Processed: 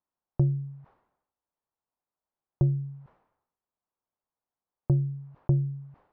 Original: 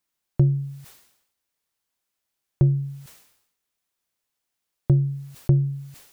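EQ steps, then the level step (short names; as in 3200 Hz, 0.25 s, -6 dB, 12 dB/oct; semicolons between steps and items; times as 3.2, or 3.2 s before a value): synth low-pass 960 Hz, resonance Q 1.7; air absorption 120 m; -5.5 dB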